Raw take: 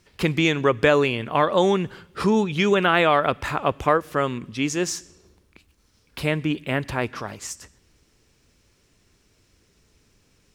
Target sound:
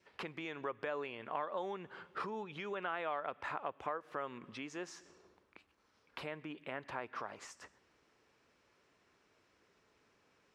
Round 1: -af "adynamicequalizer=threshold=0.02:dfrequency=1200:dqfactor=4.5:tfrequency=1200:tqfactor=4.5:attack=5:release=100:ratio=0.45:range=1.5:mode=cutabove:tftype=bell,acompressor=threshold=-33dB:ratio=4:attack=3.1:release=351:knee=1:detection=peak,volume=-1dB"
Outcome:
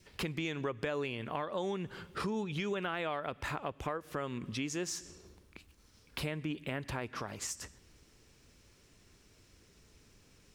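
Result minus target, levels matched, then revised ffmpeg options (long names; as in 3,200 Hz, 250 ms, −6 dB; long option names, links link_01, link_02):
1,000 Hz band −4.5 dB
-af "adynamicequalizer=threshold=0.02:dfrequency=1200:dqfactor=4.5:tfrequency=1200:tqfactor=4.5:attack=5:release=100:ratio=0.45:range=1.5:mode=cutabove:tftype=bell,acompressor=threshold=-33dB:ratio=4:attack=3.1:release=351:knee=1:detection=peak,bandpass=frequency=1000:width_type=q:width=0.82:csg=0,volume=-1dB"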